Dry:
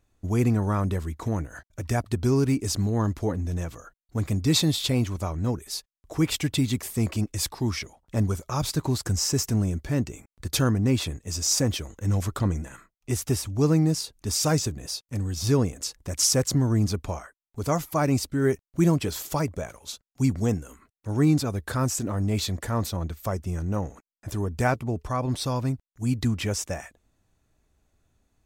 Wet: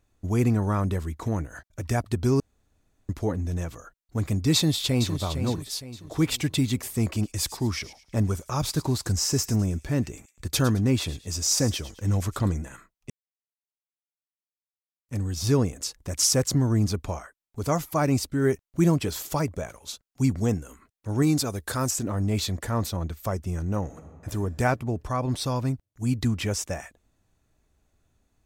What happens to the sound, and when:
2.40–3.09 s: room tone
4.54–5.17 s: echo throw 460 ms, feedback 40%, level -9 dB
7.03–12.55 s: feedback echo behind a high-pass 108 ms, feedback 32%, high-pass 2.6 kHz, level -13 dB
13.10–15.08 s: mute
21.22–21.91 s: tone controls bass -4 dB, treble +7 dB
23.83–24.31 s: reverb throw, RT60 2 s, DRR 4 dB

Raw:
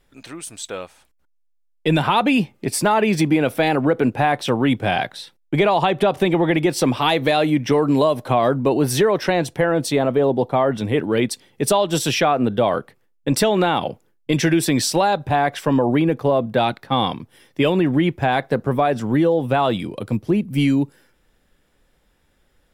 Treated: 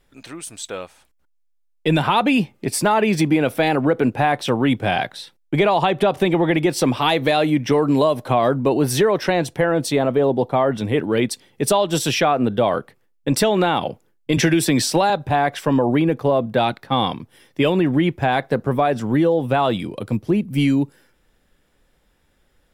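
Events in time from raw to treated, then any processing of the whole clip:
14.37–15.10 s: three bands compressed up and down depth 70%

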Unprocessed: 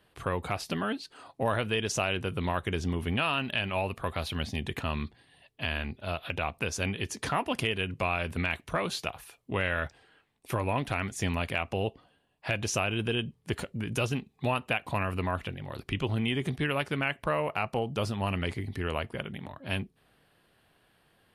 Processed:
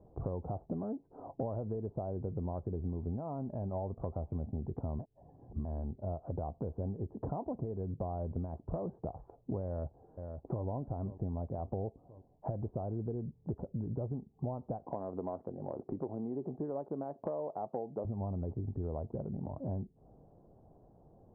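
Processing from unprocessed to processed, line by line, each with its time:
4.99–5.65 s: reverse
9.65–10.65 s: echo throw 520 ms, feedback 45%, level -18 dB
14.85–18.05 s: high-pass 290 Hz
whole clip: steep low-pass 810 Hz 36 dB/octave; bass shelf 120 Hz +5 dB; compression 6:1, threshold -43 dBFS; trim +7.5 dB

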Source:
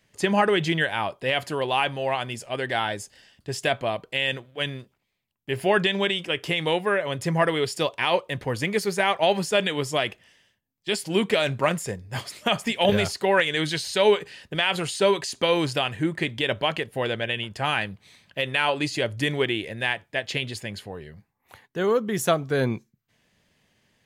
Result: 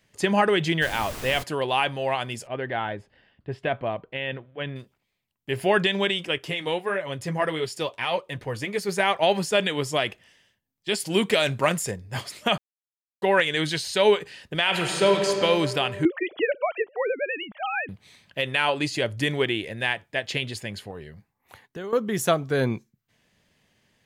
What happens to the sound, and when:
0.81–1.42 s: added noise pink -36 dBFS
2.47–4.76 s: distance through air 470 m
6.38–8.89 s: flange 1.6 Hz, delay 4.8 ms, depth 6 ms, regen -41%
11.00–11.91 s: treble shelf 4 kHz +6 dB
12.58–13.22 s: mute
14.61–15.29 s: reverb throw, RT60 2.7 s, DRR 2.5 dB
16.05–17.89 s: formants replaced by sine waves
20.90–21.93 s: compression, threshold -32 dBFS

